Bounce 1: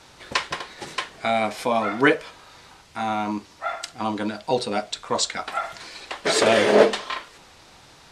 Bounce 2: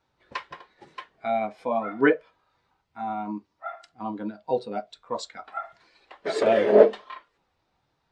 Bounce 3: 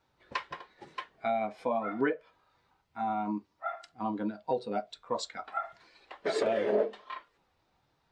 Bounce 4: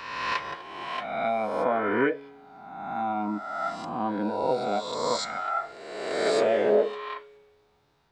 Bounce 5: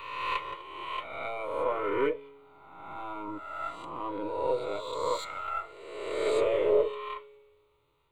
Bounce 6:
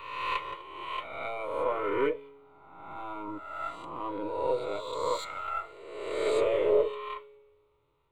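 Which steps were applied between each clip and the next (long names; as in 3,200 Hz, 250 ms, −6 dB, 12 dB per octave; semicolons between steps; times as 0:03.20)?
high-shelf EQ 3,900 Hz −6 dB; every bin expanded away from the loudest bin 1.5 to 1
downward compressor 4 to 1, threshold −27 dBFS, peak gain reduction 15.5 dB
peak hold with a rise ahead of every peak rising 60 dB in 1.38 s; tuned comb filter 140 Hz, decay 1.4 s, mix 50%; level +8 dB
gain on one half-wave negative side −3 dB; phaser with its sweep stopped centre 1,100 Hz, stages 8
one half of a high-frequency compander decoder only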